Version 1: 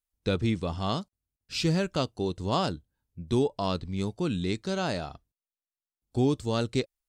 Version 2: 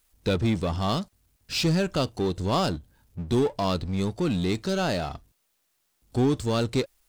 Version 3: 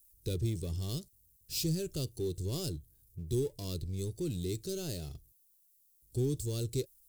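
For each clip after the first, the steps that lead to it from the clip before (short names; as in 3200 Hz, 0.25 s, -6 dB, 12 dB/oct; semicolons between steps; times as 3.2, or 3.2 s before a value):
power-law curve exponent 0.7
EQ curve 150 Hz 0 dB, 210 Hz -14 dB, 380 Hz -1 dB, 760 Hz -23 dB, 1300 Hz -23 dB, 13000 Hz +13 dB; gain -5.5 dB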